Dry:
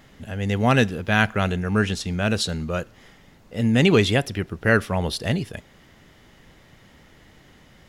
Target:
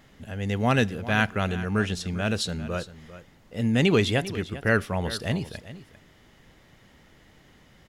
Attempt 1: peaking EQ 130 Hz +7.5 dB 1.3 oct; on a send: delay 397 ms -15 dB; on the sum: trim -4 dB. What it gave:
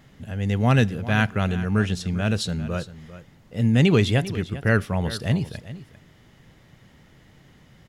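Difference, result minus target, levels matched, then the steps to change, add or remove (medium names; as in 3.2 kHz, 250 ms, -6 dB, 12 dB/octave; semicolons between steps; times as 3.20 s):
125 Hz band +3.5 dB
remove: peaking EQ 130 Hz +7.5 dB 1.3 oct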